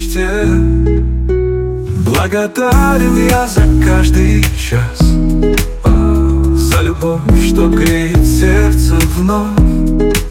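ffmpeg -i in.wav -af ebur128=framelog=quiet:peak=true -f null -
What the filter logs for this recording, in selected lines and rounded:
Integrated loudness:
  I:         -11.8 LUFS
  Threshold: -21.8 LUFS
Loudness range:
  LRA:         1.2 LU
  Threshold: -31.6 LUFS
  LRA low:   -12.4 LUFS
  LRA high:  -11.1 LUFS
True peak:
  Peak:       -0.9 dBFS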